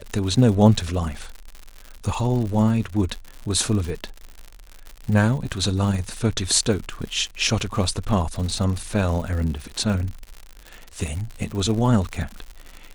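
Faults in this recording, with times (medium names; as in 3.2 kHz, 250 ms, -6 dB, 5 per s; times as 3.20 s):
crackle 110 per s -29 dBFS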